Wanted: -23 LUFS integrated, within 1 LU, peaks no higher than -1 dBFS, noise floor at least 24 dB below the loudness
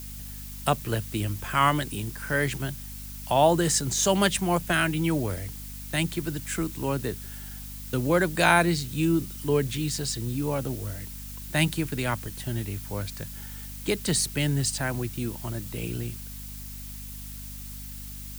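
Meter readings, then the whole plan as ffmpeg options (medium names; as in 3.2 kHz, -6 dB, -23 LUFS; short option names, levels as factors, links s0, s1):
hum 50 Hz; highest harmonic 250 Hz; hum level -39 dBFS; noise floor -39 dBFS; noise floor target -51 dBFS; loudness -27.0 LUFS; peak level -6.5 dBFS; loudness target -23.0 LUFS
-> -af "bandreject=f=50:t=h:w=6,bandreject=f=100:t=h:w=6,bandreject=f=150:t=h:w=6,bandreject=f=200:t=h:w=6,bandreject=f=250:t=h:w=6"
-af "afftdn=nr=12:nf=-39"
-af "volume=1.58"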